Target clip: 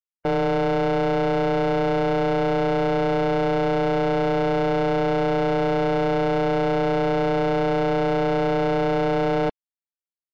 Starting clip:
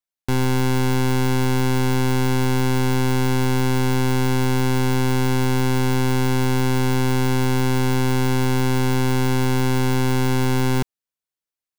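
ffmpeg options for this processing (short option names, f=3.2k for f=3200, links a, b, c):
-af "afftdn=nr=28:nf=-30,aeval=exprs='val(0)*sin(2*PI*400*n/s)':c=same,asetrate=50274,aresample=44100"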